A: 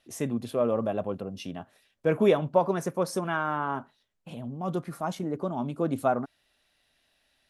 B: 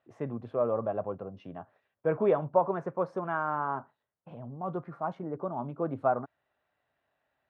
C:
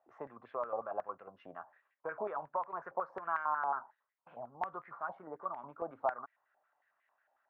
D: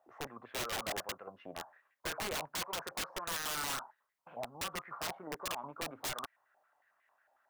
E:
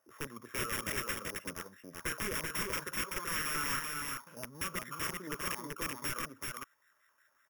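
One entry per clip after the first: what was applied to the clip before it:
Chebyshev band-pass 110–1200 Hz, order 2; peaking EQ 220 Hz -8 dB 1.3 oct
compression 3:1, threshold -33 dBFS, peak gain reduction 11 dB; step-sequenced band-pass 11 Hz 770–2000 Hz; trim +9 dB
integer overflow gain 35.5 dB; trim +4 dB
sorted samples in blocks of 8 samples; static phaser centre 1.8 kHz, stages 4; delay 383 ms -3.5 dB; trim +5.5 dB

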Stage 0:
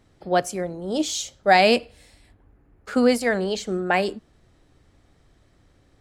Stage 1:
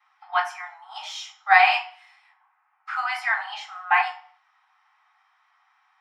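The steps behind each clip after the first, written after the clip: steep high-pass 770 Hz 96 dB/octave; reverberation RT60 0.45 s, pre-delay 3 ms, DRR -12.5 dB; trim -10.5 dB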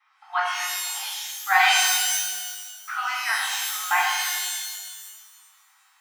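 high-pass 930 Hz 12 dB/octave; dynamic bell 2.6 kHz, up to -5 dB, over -36 dBFS, Q 0.94; pitch-shifted reverb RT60 1.4 s, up +12 st, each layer -2 dB, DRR 0.5 dB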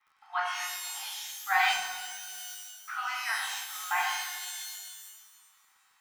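de-esser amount 50%; crackle 52 per s -50 dBFS; trim -6.5 dB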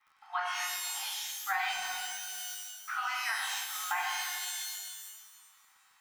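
band-stop 410 Hz, Q 12; compression 6:1, threshold -31 dBFS, peak gain reduction 10 dB; trim +1.5 dB

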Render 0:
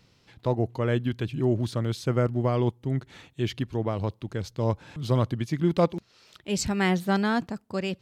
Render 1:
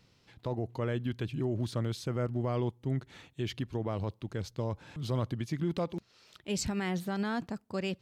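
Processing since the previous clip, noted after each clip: peak limiter -19.5 dBFS, peak gain reduction 9.5 dB; trim -4 dB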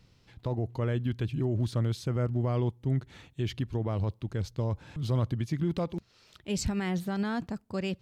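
bass shelf 110 Hz +11.5 dB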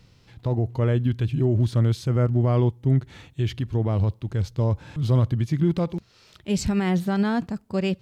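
harmonic-percussive split harmonic +6 dB; trim +2.5 dB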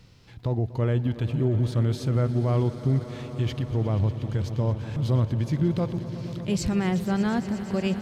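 in parallel at -1 dB: compression, threshold -30 dBFS, peak gain reduction 14 dB; on the sum: echo with a slow build-up 119 ms, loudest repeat 5, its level -17 dB; trim -4.5 dB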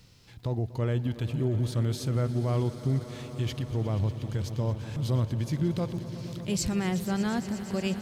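treble shelf 4.8 kHz +11 dB; trim -4 dB

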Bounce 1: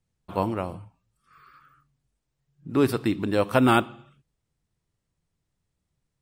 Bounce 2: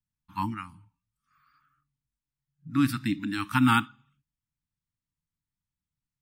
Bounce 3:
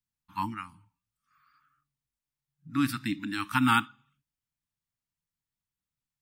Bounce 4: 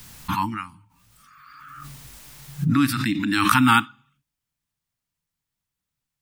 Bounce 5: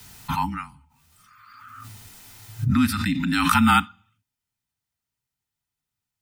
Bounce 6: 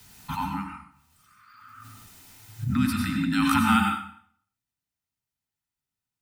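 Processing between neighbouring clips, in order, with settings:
Chebyshev band-stop 300–870 Hz, order 4; spectral noise reduction 12 dB
bass shelf 280 Hz -6.5 dB
swell ahead of each attack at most 24 dB/s; trim +6.5 dB
frequency shift -32 Hz; comb of notches 560 Hz
plate-style reverb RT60 0.59 s, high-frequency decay 0.85×, pre-delay 80 ms, DRR 2 dB; trim -6 dB

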